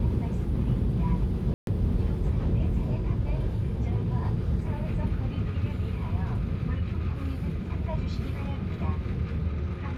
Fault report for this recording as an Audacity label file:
1.540000	1.670000	drop-out 132 ms

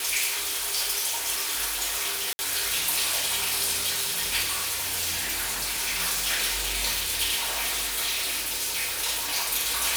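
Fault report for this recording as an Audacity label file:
2.330000	2.390000	drop-out 60 ms
4.420000	6.010000	clipping −24 dBFS
7.360000	8.830000	clipping −24 dBFS

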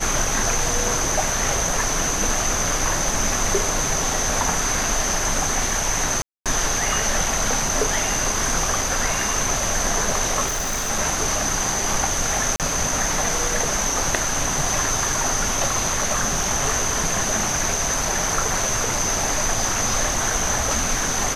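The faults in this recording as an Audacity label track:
6.220000	6.460000	drop-out 237 ms
10.460000	10.900000	clipping −21 dBFS
12.560000	12.600000	drop-out 38 ms

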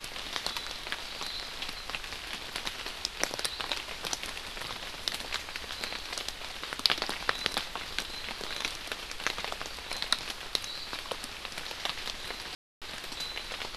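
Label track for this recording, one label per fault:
12.550000	12.820000	drop-out 267 ms

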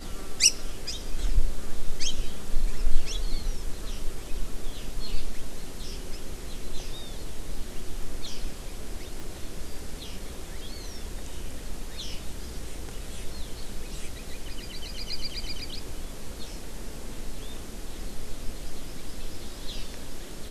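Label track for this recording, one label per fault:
9.200000	9.200000	click

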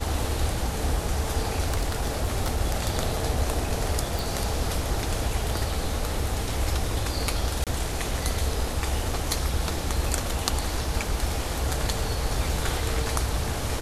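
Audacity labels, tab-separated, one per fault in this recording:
1.660000	2.580000	clipping −19.5 dBFS
4.190000	4.190000	click
7.640000	7.670000	drop-out 27 ms

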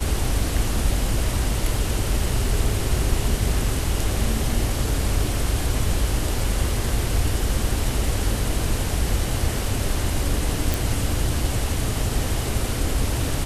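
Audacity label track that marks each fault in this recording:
10.740000	10.740000	click

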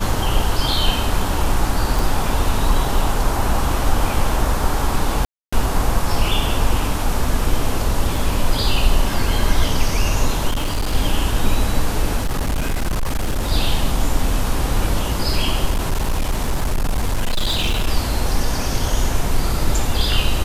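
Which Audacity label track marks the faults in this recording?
1.990000	1.990000	click
5.250000	5.530000	drop-out 275 ms
8.160000	8.160000	drop-out 2.9 ms
10.500000	10.950000	clipping −16 dBFS
12.170000	13.520000	clipping −16 dBFS
15.700000	17.870000	clipping −14.5 dBFS

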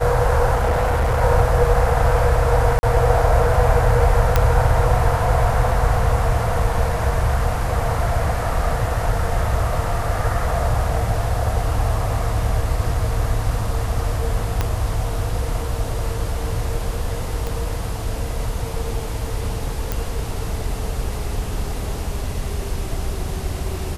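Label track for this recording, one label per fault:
0.550000	1.220000	clipping −14.5 dBFS
2.790000	2.830000	drop-out 40 ms
4.360000	4.360000	click −2 dBFS
14.610000	14.610000	click −6 dBFS
17.470000	17.470000	click
19.920000	19.920000	click

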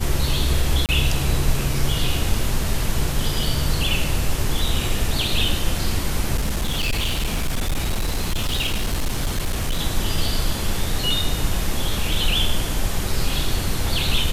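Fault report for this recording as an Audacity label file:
0.860000	0.890000	drop-out 28 ms
6.370000	9.800000	clipping −17.5 dBFS

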